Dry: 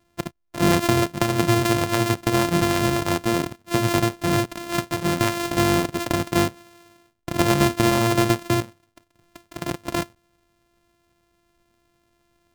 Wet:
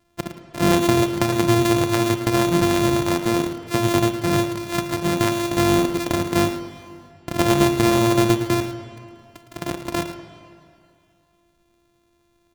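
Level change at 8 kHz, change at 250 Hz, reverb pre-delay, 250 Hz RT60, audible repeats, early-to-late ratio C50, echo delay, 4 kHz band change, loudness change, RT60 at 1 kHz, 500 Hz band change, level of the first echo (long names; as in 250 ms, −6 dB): +0.5 dB, +3.0 dB, 33 ms, 2.5 s, 1, 7.5 dB, 110 ms, +0.5 dB, +1.5 dB, 2.4 s, +2.5 dB, −11.5 dB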